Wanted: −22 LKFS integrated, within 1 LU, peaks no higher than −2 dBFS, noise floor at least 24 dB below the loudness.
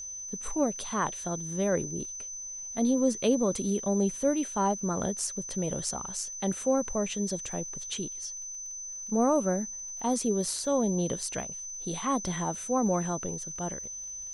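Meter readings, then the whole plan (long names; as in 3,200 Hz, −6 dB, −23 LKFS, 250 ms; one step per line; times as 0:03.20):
crackle rate 28 per second; interfering tone 6,100 Hz; level of the tone −37 dBFS; integrated loudness −30.0 LKFS; sample peak −14.0 dBFS; target loudness −22.0 LKFS
→ click removal
notch filter 6,100 Hz, Q 30
level +8 dB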